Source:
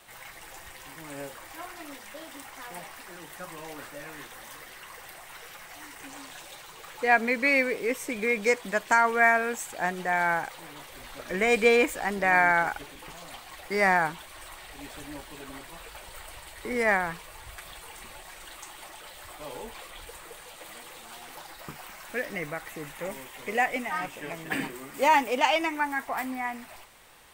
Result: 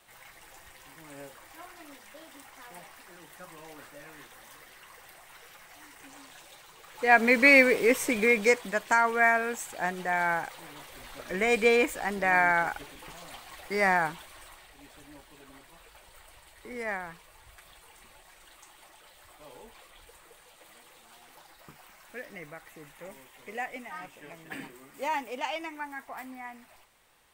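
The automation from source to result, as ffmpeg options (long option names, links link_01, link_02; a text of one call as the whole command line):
ffmpeg -i in.wav -af "volume=5.5dB,afade=type=in:start_time=6.9:duration=0.47:silence=0.251189,afade=type=out:start_time=8.04:duration=0.68:silence=0.421697,afade=type=out:start_time=14.12:duration=0.62:silence=0.398107" out.wav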